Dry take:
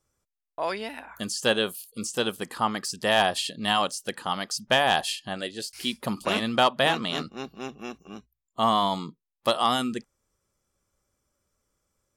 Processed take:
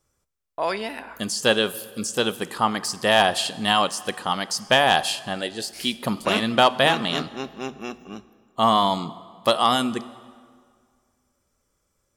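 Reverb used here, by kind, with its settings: plate-style reverb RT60 2 s, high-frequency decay 0.75×, DRR 15.5 dB; trim +4 dB

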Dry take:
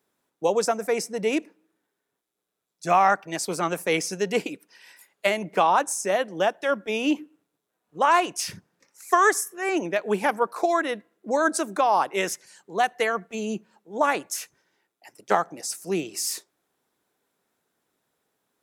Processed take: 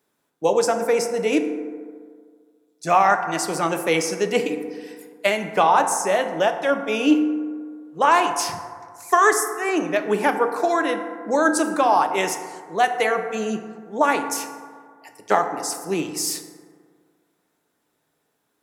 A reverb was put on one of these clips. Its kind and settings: FDN reverb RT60 1.9 s, low-frequency decay 0.95×, high-frequency decay 0.35×, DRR 6 dB; trim +2.5 dB

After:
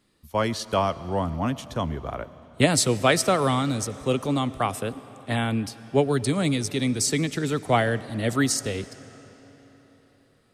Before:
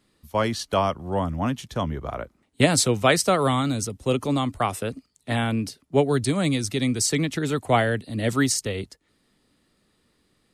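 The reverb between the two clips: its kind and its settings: algorithmic reverb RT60 4.4 s, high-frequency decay 0.8×, pre-delay 55 ms, DRR 16.5 dB; trim -1 dB

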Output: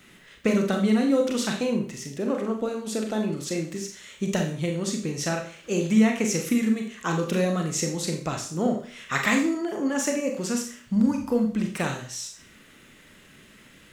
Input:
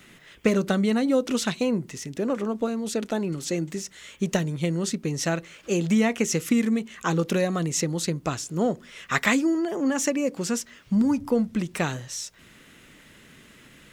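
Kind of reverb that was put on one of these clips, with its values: Schroeder reverb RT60 0.45 s, combs from 29 ms, DRR 2.5 dB; trim -2.5 dB

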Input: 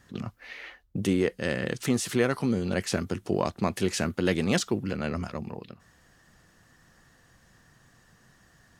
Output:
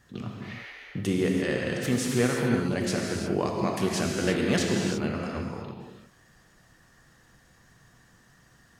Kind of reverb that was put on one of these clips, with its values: gated-style reverb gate 370 ms flat, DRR -1 dB; trim -2.5 dB

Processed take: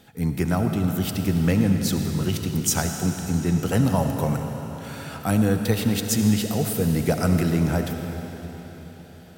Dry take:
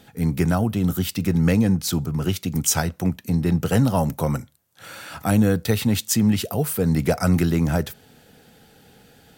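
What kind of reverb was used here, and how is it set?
algorithmic reverb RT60 4.4 s, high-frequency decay 0.95×, pre-delay 30 ms, DRR 4.5 dB; trim -2.5 dB

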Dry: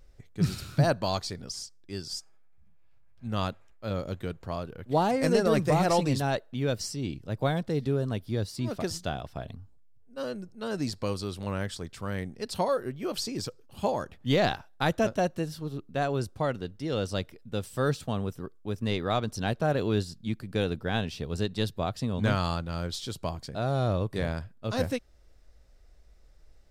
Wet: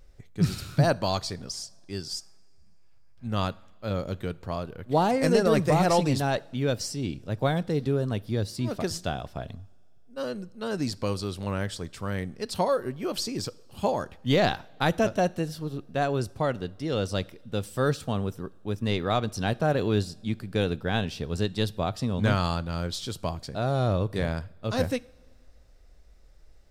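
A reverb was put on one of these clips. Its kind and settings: two-slope reverb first 0.59 s, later 2.9 s, from -17 dB, DRR 20 dB; trim +2 dB

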